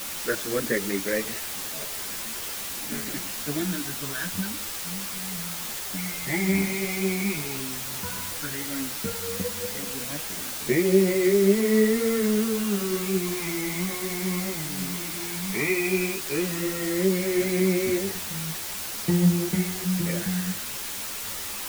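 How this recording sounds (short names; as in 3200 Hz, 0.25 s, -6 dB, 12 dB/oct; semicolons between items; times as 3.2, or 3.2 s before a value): phasing stages 12, 0.12 Hz, lowest notch 450–1200 Hz; a quantiser's noise floor 6-bit, dither triangular; a shimmering, thickened sound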